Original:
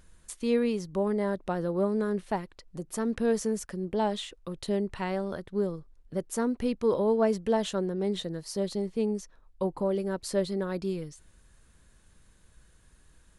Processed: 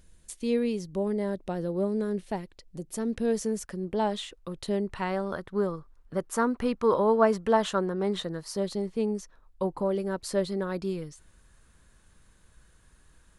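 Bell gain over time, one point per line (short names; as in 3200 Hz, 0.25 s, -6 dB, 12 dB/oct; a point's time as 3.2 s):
bell 1200 Hz 1.2 oct
3.19 s -7.5 dB
3.76 s +1.5 dB
4.83 s +1.5 dB
5.61 s +11.5 dB
8.2 s +11.5 dB
8.69 s +3 dB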